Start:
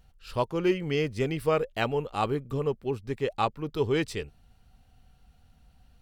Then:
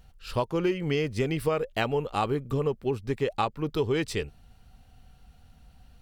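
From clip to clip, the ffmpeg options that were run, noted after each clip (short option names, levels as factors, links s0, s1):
-af "acompressor=threshold=0.0447:ratio=6,volume=1.68"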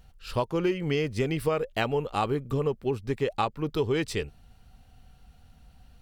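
-af anull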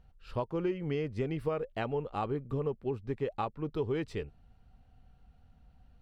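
-af "lowpass=f=1400:p=1,volume=0.531"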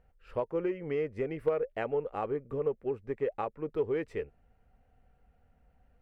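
-af "equalizer=f=125:t=o:w=1:g=-3,equalizer=f=500:t=o:w=1:g=10,equalizer=f=2000:t=o:w=1:g=9,equalizer=f=4000:t=o:w=1:g=-9,aeval=exprs='0.237*(cos(1*acos(clip(val(0)/0.237,-1,1)))-cos(1*PI/2))+0.0266*(cos(3*acos(clip(val(0)/0.237,-1,1)))-cos(3*PI/2))+0.0119*(cos(5*acos(clip(val(0)/0.237,-1,1)))-cos(5*PI/2))+0.00473*(cos(7*acos(clip(val(0)/0.237,-1,1)))-cos(7*PI/2))':c=same,volume=0.668"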